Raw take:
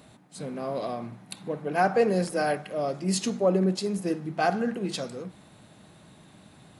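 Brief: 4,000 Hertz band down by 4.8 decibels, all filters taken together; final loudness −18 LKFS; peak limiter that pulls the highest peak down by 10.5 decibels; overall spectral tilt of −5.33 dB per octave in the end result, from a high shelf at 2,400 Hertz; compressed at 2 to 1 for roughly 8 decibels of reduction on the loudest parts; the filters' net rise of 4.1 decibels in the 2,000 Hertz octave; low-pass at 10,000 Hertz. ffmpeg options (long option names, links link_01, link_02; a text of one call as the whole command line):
ffmpeg -i in.wav -af "lowpass=10000,equalizer=frequency=2000:width_type=o:gain=8.5,highshelf=frequency=2400:gain=-3.5,equalizer=frequency=4000:width_type=o:gain=-5,acompressor=threshold=-32dB:ratio=2,volume=19dB,alimiter=limit=-8.5dB:level=0:latency=1" out.wav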